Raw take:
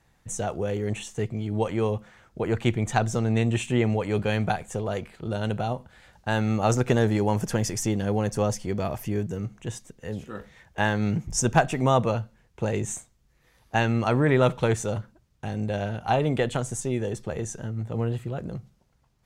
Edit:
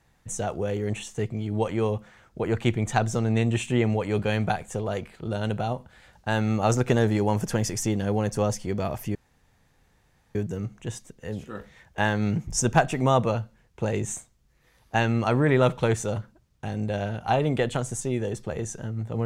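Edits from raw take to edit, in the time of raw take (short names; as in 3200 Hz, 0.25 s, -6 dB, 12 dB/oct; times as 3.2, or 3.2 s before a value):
9.15 insert room tone 1.20 s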